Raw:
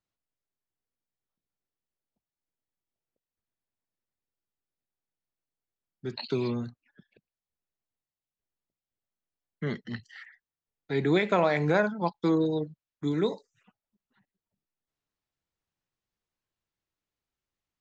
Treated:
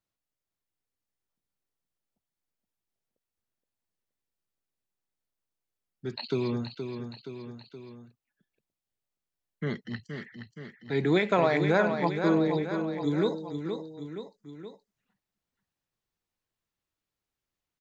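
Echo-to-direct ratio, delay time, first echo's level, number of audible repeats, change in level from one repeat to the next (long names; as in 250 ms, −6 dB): −6.0 dB, 472 ms, −7.5 dB, 3, −4.5 dB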